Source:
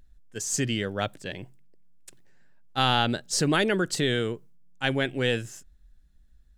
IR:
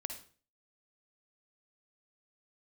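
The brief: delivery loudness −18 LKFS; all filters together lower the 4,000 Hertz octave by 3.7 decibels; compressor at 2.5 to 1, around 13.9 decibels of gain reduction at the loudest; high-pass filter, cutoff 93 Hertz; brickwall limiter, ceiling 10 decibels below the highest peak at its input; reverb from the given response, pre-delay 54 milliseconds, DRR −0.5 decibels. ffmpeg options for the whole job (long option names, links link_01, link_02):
-filter_complex "[0:a]highpass=93,equalizer=frequency=4000:width_type=o:gain=-5,acompressor=threshold=-42dB:ratio=2.5,alimiter=level_in=8dB:limit=-24dB:level=0:latency=1,volume=-8dB,asplit=2[link_01][link_02];[1:a]atrim=start_sample=2205,adelay=54[link_03];[link_02][link_03]afir=irnorm=-1:irlink=0,volume=1.5dB[link_04];[link_01][link_04]amix=inputs=2:normalize=0,volume=22.5dB"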